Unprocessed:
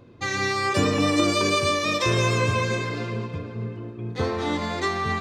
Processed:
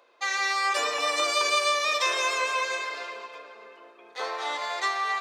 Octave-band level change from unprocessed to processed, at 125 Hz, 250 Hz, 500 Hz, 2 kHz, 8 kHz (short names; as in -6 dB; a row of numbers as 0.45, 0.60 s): under -40 dB, -24.0 dB, -6.5 dB, 0.0 dB, 0.0 dB